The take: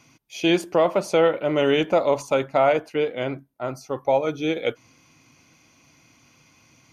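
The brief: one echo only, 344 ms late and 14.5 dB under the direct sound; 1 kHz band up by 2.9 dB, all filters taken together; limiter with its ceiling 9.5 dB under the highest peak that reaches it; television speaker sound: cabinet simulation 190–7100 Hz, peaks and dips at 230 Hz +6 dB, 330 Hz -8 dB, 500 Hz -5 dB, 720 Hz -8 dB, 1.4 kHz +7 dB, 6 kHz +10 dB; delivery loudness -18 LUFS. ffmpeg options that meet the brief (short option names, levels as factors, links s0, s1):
-af "equalizer=f=1000:t=o:g=5,alimiter=limit=0.178:level=0:latency=1,highpass=f=190:w=0.5412,highpass=f=190:w=1.3066,equalizer=f=230:t=q:w=4:g=6,equalizer=f=330:t=q:w=4:g=-8,equalizer=f=500:t=q:w=4:g=-5,equalizer=f=720:t=q:w=4:g=-8,equalizer=f=1400:t=q:w=4:g=7,equalizer=f=6000:t=q:w=4:g=10,lowpass=f=7100:w=0.5412,lowpass=f=7100:w=1.3066,aecho=1:1:344:0.188,volume=3.55"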